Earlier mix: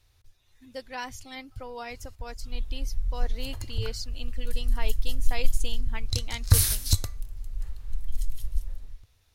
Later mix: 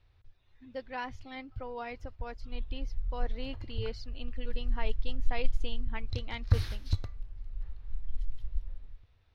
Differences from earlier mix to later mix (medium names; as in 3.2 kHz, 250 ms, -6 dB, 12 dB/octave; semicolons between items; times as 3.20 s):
background -5.5 dB; master: add distance through air 300 m